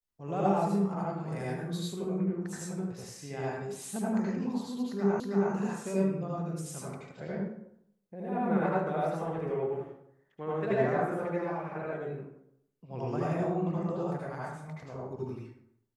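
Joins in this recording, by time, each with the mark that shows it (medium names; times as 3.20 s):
5.20 s: repeat of the last 0.32 s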